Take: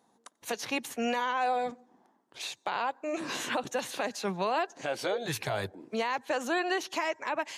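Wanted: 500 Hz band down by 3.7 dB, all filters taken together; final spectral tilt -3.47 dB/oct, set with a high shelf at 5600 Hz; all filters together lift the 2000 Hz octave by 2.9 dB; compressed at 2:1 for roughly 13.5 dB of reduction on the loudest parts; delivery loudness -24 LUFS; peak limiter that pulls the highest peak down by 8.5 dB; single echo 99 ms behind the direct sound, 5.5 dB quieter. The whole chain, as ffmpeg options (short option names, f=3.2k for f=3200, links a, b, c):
-af "equalizer=f=500:t=o:g=-5,equalizer=f=2k:t=o:g=3.5,highshelf=f=5.6k:g=4,acompressor=threshold=-51dB:ratio=2,alimiter=level_in=12.5dB:limit=-24dB:level=0:latency=1,volume=-12.5dB,aecho=1:1:99:0.531,volume=22dB"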